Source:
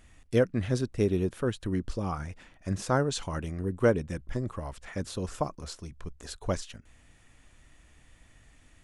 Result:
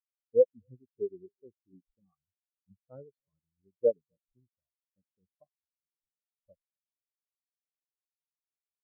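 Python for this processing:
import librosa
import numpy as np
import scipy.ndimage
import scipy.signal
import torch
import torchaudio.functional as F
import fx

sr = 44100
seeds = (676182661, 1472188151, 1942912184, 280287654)

p1 = fx.low_shelf(x, sr, hz=110.0, db=-8.5)
p2 = p1 + fx.echo_single(p1, sr, ms=256, db=-15.0, dry=0)
y = fx.spectral_expand(p2, sr, expansion=4.0)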